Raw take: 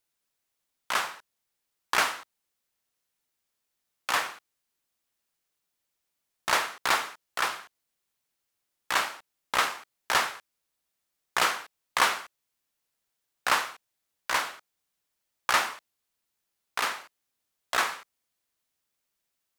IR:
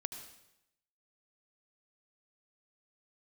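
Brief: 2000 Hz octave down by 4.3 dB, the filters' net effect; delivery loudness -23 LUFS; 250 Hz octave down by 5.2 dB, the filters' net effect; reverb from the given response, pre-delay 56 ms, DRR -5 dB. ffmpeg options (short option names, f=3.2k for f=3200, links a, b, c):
-filter_complex "[0:a]equalizer=f=250:t=o:g=-7.5,equalizer=f=2k:t=o:g=-5.5,asplit=2[a][b];[1:a]atrim=start_sample=2205,adelay=56[c];[b][c]afir=irnorm=-1:irlink=0,volume=6dB[d];[a][d]amix=inputs=2:normalize=0,volume=2.5dB"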